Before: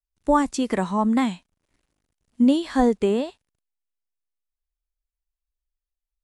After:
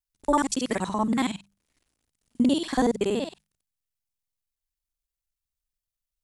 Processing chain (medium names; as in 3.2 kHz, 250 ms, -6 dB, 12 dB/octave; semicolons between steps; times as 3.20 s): time reversed locally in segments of 47 ms; treble shelf 2.6 kHz +9.5 dB; hum notches 50/100/150/200 Hz; trim -4 dB